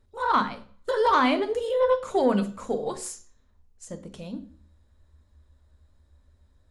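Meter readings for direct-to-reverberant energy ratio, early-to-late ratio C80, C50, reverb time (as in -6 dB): 7.5 dB, 18.5 dB, 14.0 dB, 0.45 s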